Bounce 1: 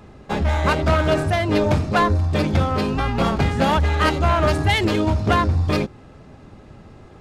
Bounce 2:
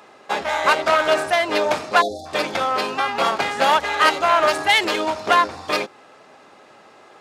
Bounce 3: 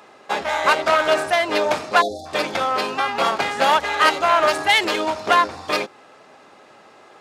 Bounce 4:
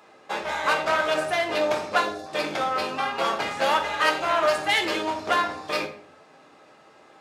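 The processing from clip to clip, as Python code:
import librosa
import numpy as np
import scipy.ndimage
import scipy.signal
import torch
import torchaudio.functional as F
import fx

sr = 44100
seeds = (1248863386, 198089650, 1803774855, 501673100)

y1 = fx.spec_erase(x, sr, start_s=2.02, length_s=0.24, low_hz=820.0, high_hz=3300.0)
y1 = scipy.signal.sosfilt(scipy.signal.butter(2, 620.0, 'highpass', fs=sr, output='sos'), y1)
y1 = y1 * librosa.db_to_amplitude(5.0)
y2 = y1
y3 = fx.room_shoebox(y2, sr, seeds[0], volume_m3=65.0, walls='mixed', distance_m=0.57)
y3 = y3 * librosa.db_to_amplitude(-7.0)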